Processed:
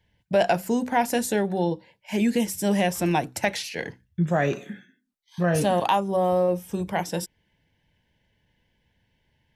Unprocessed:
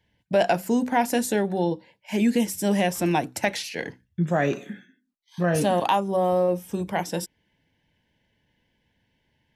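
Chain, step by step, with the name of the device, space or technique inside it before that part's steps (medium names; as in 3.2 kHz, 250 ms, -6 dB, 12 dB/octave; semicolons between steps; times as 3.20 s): low shelf boost with a cut just above (bass shelf 89 Hz +6.5 dB; peaking EQ 270 Hz -4 dB 0.55 oct)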